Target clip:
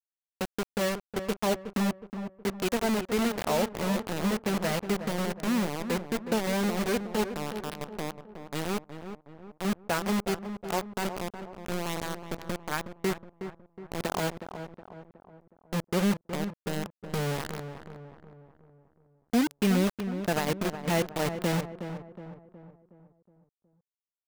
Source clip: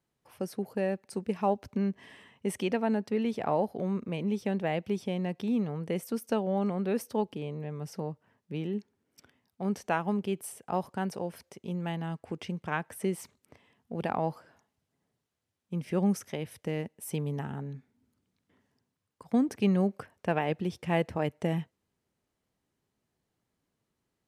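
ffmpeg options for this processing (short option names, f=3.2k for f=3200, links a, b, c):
-filter_complex "[0:a]bass=f=250:g=1,treble=f=4k:g=-6,bandreject=f=800:w=17,acrusher=bits=4:mix=0:aa=0.000001,asplit=2[a][b];[b]adelay=367,lowpass=f=1.6k:p=1,volume=-9dB,asplit=2[c][d];[d]adelay=367,lowpass=f=1.6k:p=1,volume=0.49,asplit=2[e][f];[f]adelay=367,lowpass=f=1.6k:p=1,volume=0.49,asplit=2[g][h];[h]adelay=367,lowpass=f=1.6k:p=1,volume=0.49,asplit=2[i][j];[j]adelay=367,lowpass=f=1.6k:p=1,volume=0.49,asplit=2[k][l];[l]adelay=367,lowpass=f=1.6k:p=1,volume=0.49[m];[c][e][g][i][k][m]amix=inputs=6:normalize=0[n];[a][n]amix=inputs=2:normalize=0"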